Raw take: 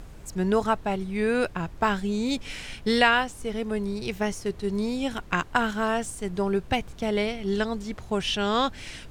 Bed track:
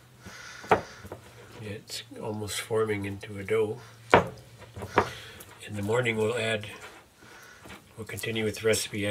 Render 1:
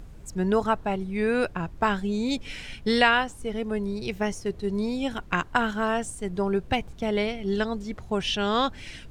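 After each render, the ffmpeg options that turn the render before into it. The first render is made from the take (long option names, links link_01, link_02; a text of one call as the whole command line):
ffmpeg -i in.wav -af "afftdn=noise_reduction=6:noise_floor=-44" out.wav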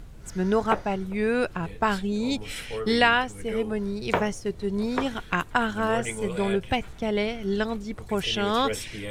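ffmpeg -i in.wav -i bed.wav -filter_complex "[1:a]volume=-6dB[link_01];[0:a][link_01]amix=inputs=2:normalize=0" out.wav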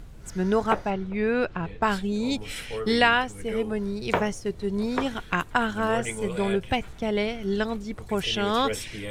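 ffmpeg -i in.wav -filter_complex "[0:a]asettb=1/sr,asplit=3[link_01][link_02][link_03];[link_01]atrim=end=0.904[link_04];[link_02]atrim=start=0.9:end=1.82,asetpts=PTS-STARTPTS,afade=type=in:duration=0.004:curve=qsin,afade=type=out:start_time=0.916:duration=0.004:curve=qsin,lowpass=4200[link_05];[link_03]atrim=start=1.816[link_06];[link_04][link_05]acrossfade=duration=0.004:curve1=hsin:curve2=qsin[link_07];[link_07][link_06]acrossfade=duration=0.004:curve1=qsin:curve2=hsin" out.wav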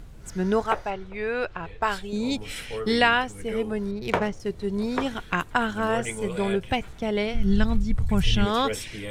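ffmpeg -i in.wav -filter_complex "[0:a]asettb=1/sr,asplit=3[link_01][link_02][link_03];[link_01]atrim=end=0.614[link_04];[link_02]atrim=start=0.61:end=2.13,asetpts=PTS-STARTPTS,afade=type=in:duration=0.004:curve=qsin,afade=type=out:start_time=1.516:duration=0.004:curve=qsin,equalizer=frequency=210:width=1.1:gain=-11.5[link_05];[link_03]atrim=start=2.126[link_06];[link_04][link_05]acrossfade=duration=0.004:curve1=hsin:curve2=qsin[link_07];[link_07][link_06]acrossfade=duration=0.004:curve1=qsin:curve2=hsin,asettb=1/sr,asplit=3[link_08][link_09][link_10];[link_08]atrim=end=3.914[link_11];[link_09]atrim=start=3.91:end=4.4,asetpts=PTS-STARTPTS,afade=type=in:duration=0.004:curve=qsin,afade=type=out:start_time=0.486:duration=0.004:curve=qsin,adynamicsmooth=sensitivity=6.5:basefreq=2400[link_12];[link_10]atrim=start=4.396[link_13];[link_11][link_12]acrossfade=duration=0.004:curve1=hsin:curve2=qsin[link_14];[link_14][link_13]acrossfade=duration=0.004:curve1=qsin:curve2=hsin,asplit=3[link_15][link_16][link_17];[link_15]afade=type=out:start_time=7.33:duration=0.02[link_18];[link_16]asubboost=boost=11:cutoff=120,afade=type=in:start_time=7.33:duration=0.02,afade=type=out:start_time=8.45:duration=0.02[link_19];[link_17]afade=type=in:start_time=8.45:duration=0.02[link_20];[link_18][link_19][link_20]amix=inputs=3:normalize=0" out.wav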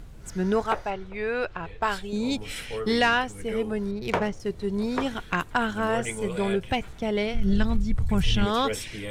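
ffmpeg -i in.wav -af "asoftclip=type=tanh:threshold=-12dB" out.wav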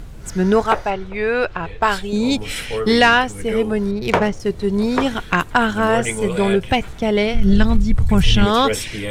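ffmpeg -i in.wav -af "volume=9dB" out.wav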